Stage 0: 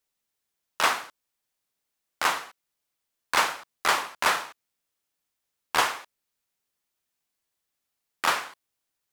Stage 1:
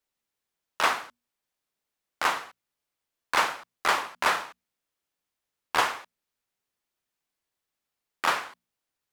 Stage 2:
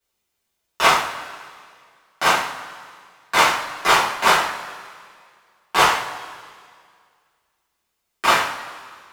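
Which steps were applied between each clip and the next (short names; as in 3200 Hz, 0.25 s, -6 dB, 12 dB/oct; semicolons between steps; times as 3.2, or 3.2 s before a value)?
high shelf 4200 Hz -6 dB; notches 60/120/180/240 Hz
octaver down 2 oct, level -6 dB; reverb, pre-delay 3 ms, DRR -9 dB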